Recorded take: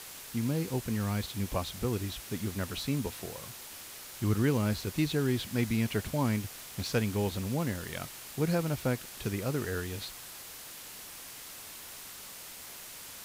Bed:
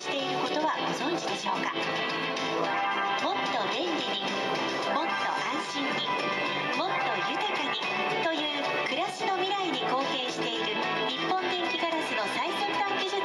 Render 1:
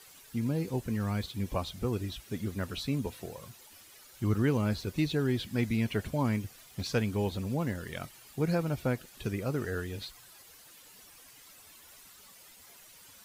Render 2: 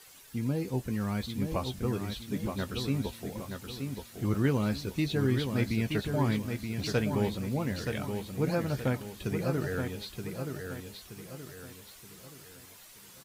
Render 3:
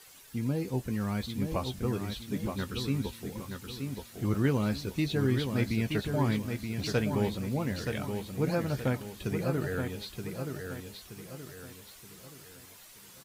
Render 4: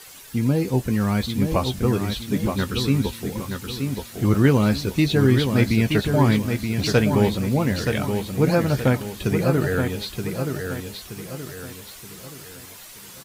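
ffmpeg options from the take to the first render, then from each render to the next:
-af "afftdn=nr=12:nf=-46"
-filter_complex "[0:a]asplit=2[s0][s1];[s1]adelay=15,volume=0.282[s2];[s0][s2]amix=inputs=2:normalize=0,asplit=2[s3][s4];[s4]aecho=0:1:925|1850|2775|3700|4625:0.501|0.2|0.0802|0.0321|0.0128[s5];[s3][s5]amix=inputs=2:normalize=0"
-filter_complex "[0:a]asettb=1/sr,asplit=3[s0][s1][s2];[s0]atrim=end=2.574[s3];[s1]atrim=start=2.57:end=3.84,asetpts=PTS-STARTPTS,afade=t=in:d=0.004:c=qsin,afade=t=out:st=1.266:d=0.004:c=qsin,equalizer=f=650:t=o:w=0.4:g=-10.5[s4];[s2]atrim=start=3.836[s5];[s3][s4]acrossfade=d=0.004:c1=hsin:c2=qsin[s6];[s6][s5]acrossfade=d=0.004:c1=qsin:c2=hsin,asettb=1/sr,asplit=3[s7][s8][s9];[s7]atrim=end=9.444[s10];[s8]atrim=start=9.44:end=9.9,asetpts=PTS-STARTPTS,afade=t=in:d=0.004:c=qsin,afade=t=out:st=0.456:d=0.004:c=qsin,equalizer=f=5500:w=4.1:g=-5.5[s11];[s9]atrim=start=9.896[s12];[s10][s11]acrossfade=d=0.004:c1=hsin:c2=qsin[s13];[s13][s12]acrossfade=d=0.004:c1=qsin:c2=hsin"
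-af "volume=3.35"

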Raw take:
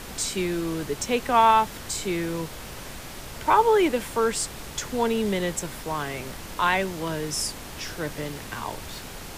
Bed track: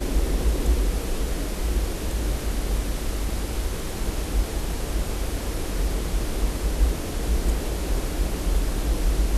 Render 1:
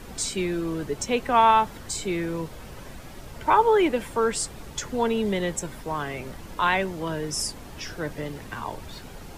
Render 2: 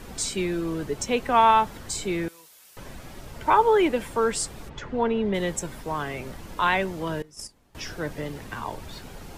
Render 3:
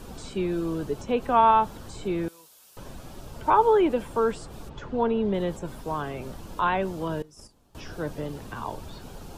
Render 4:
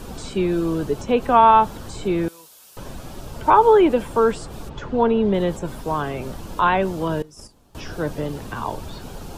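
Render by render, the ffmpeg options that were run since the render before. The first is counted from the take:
-af "afftdn=nr=9:nf=-39"
-filter_complex "[0:a]asettb=1/sr,asplit=3[s0][s1][s2];[s0]atrim=end=2.284[s3];[s1]atrim=start=2.28:end=2.77,asetpts=PTS-STARTPTS,afade=t=in:d=0.004:c=qsin,afade=t=out:st=0.486:d=0.004:c=qsin,aderivative[s4];[s2]atrim=start=2.766[s5];[s3][s4]acrossfade=d=0.004:c1=hsin:c2=qsin[s6];[s6][s5]acrossfade=d=0.004:c1=qsin:c2=hsin,asplit=3[s7][s8][s9];[s7]afade=t=out:st=4.68:d=0.02[s10];[s8]lowpass=2500,afade=t=in:st=4.68:d=0.02,afade=t=out:st=5.33:d=0.02[s11];[s9]afade=t=in:st=5.33:d=0.02[s12];[s10][s11][s12]amix=inputs=3:normalize=0,asettb=1/sr,asplit=3[s13][s14][s15];[s13]atrim=end=7.224[s16];[s14]atrim=start=7.22:end=7.75,asetpts=PTS-STARTPTS,afade=t=in:d=0.004:c=qsin,afade=t=out:st=0.526:d=0.004:c=qsin,agate=range=0.0891:threshold=0.0447:ratio=16:release=100:detection=peak[s17];[s15]atrim=start=7.746[s18];[s16][s17]acrossfade=d=0.004:c1=hsin:c2=qsin[s19];[s19][s18]acrossfade=d=0.004:c1=qsin:c2=hsin"
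-filter_complex "[0:a]acrossover=split=2800[s0][s1];[s1]acompressor=threshold=0.00355:ratio=4:attack=1:release=60[s2];[s0][s2]amix=inputs=2:normalize=0,equalizer=f=2000:w=2.5:g=-10"
-af "volume=2.11,alimiter=limit=0.708:level=0:latency=1"

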